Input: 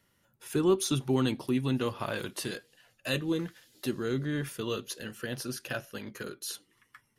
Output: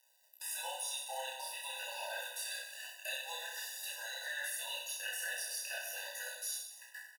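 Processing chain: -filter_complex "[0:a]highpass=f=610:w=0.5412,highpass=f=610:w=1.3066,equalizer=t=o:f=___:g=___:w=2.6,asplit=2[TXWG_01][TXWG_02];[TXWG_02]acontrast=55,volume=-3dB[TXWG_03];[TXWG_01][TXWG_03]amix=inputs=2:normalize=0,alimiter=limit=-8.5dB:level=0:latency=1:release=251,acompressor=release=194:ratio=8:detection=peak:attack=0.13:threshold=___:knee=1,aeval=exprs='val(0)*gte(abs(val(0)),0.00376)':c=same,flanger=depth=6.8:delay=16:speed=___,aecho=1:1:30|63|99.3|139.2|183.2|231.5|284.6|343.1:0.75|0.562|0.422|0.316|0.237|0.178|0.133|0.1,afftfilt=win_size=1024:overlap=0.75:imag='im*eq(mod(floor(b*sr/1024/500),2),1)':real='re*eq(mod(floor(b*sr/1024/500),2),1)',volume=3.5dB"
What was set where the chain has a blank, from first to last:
12k, 12.5, -33dB, 0.45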